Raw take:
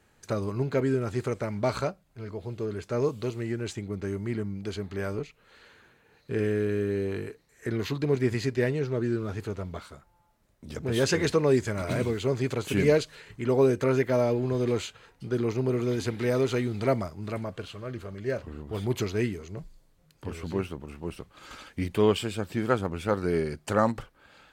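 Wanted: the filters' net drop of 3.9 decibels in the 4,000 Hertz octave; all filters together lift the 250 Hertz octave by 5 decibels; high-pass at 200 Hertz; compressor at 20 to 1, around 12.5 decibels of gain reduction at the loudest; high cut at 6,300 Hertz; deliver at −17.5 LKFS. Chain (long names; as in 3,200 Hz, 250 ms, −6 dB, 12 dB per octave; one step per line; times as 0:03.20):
high-pass filter 200 Hz
low-pass filter 6,300 Hz
parametric band 250 Hz +8 dB
parametric band 4,000 Hz −4.5 dB
downward compressor 20 to 1, threshold −26 dBFS
level +15.5 dB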